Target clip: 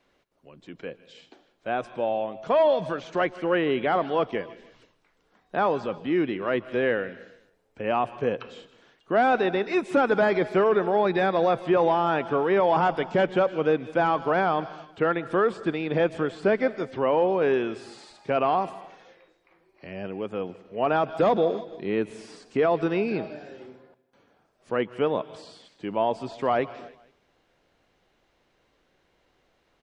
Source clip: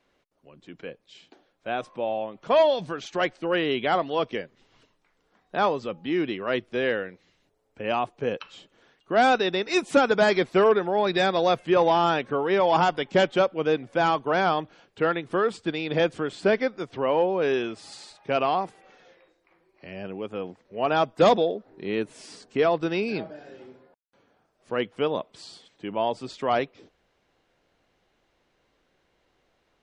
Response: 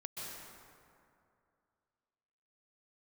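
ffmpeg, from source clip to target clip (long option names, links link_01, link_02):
-filter_complex "[0:a]aecho=1:1:157|314|471:0.0708|0.0319|0.0143,asplit=2[link_01][link_02];[1:a]atrim=start_sample=2205,afade=type=out:start_time=0.38:duration=0.01,atrim=end_sample=17199,lowpass=7100[link_03];[link_02][link_03]afir=irnorm=-1:irlink=0,volume=-16dB[link_04];[link_01][link_04]amix=inputs=2:normalize=0,alimiter=limit=-14dB:level=0:latency=1:release=14,acrossover=split=2500[link_05][link_06];[link_06]acompressor=threshold=-50dB:ratio=4:attack=1:release=60[link_07];[link_05][link_07]amix=inputs=2:normalize=0,volume=1dB"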